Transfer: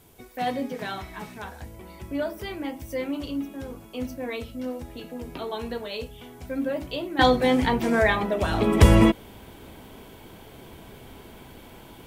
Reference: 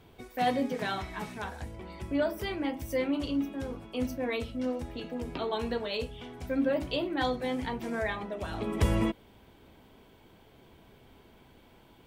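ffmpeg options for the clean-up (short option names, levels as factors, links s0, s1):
-af "agate=range=0.0891:threshold=0.0126,asetnsamples=n=441:p=0,asendcmd='7.19 volume volume -11.5dB',volume=1"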